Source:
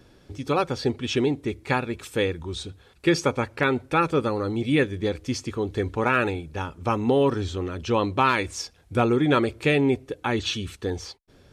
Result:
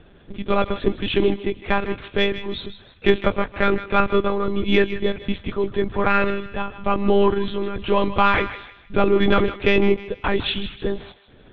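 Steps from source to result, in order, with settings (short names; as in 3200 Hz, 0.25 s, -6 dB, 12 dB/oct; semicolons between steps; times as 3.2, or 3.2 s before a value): monotone LPC vocoder at 8 kHz 200 Hz; in parallel at -6.5 dB: soft clip -13 dBFS, distortion -15 dB; on the sum: thinning echo 0.156 s, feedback 38%, high-pass 970 Hz, level -11.5 dB; gain +1.5 dB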